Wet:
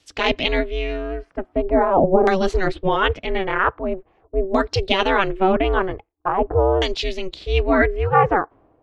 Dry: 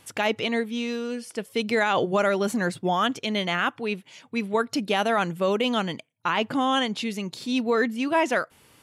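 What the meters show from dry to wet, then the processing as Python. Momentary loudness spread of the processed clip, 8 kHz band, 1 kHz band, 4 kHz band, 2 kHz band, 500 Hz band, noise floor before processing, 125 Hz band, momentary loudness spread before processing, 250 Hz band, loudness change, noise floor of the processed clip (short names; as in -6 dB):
11 LU, n/a, +6.0 dB, +2.5 dB, +3.5 dB, +6.5 dB, -61 dBFS, +9.5 dB, 9 LU, +2.0 dB, +5.0 dB, -62 dBFS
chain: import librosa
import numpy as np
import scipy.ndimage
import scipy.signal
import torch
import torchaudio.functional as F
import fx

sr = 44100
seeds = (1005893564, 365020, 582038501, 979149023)

y = fx.low_shelf(x, sr, hz=330.0, db=7.0)
y = y * np.sin(2.0 * np.pi * 190.0 * np.arange(len(y)) / sr)
y = fx.filter_lfo_lowpass(y, sr, shape='saw_down', hz=0.44, low_hz=540.0, high_hz=5600.0, q=1.6)
y = fx.band_widen(y, sr, depth_pct=40)
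y = F.gain(torch.from_numpy(y), 5.5).numpy()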